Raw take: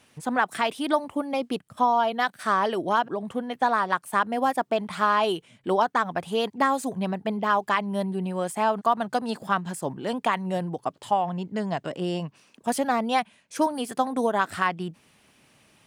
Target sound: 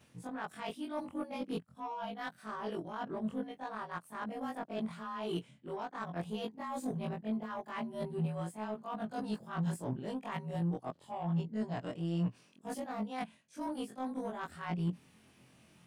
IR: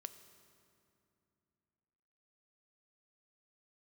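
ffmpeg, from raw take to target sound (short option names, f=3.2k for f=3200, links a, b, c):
-af "afftfilt=real='re':imag='-im':win_size=2048:overlap=0.75,areverse,acompressor=threshold=-38dB:ratio=16,areverse,equalizer=f=150:t=o:w=2.4:g=9,aeval=exprs='0.0631*(cos(1*acos(clip(val(0)/0.0631,-1,1)))-cos(1*PI/2))+0.00224*(cos(7*acos(clip(val(0)/0.0631,-1,1)))-cos(7*PI/2))':c=same"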